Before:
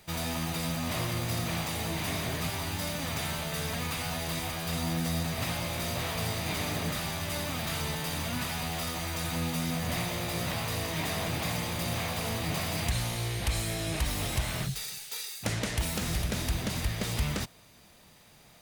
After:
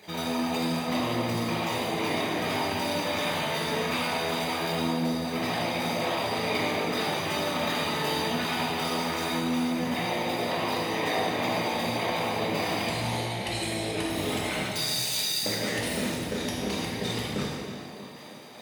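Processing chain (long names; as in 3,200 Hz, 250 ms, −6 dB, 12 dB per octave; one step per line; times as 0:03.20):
spectral envelope exaggerated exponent 2
high-pass filter 340 Hz 12 dB per octave
in parallel at +0.5 dB: compressor whose output falls as the input rises −43 dBFS
on the sum: tape delay 316 ms, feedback 67%, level −9 dB, low-pass 2,400 Hz
reverb whose tail is shaped and stops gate 490 ms falling, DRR −5 dB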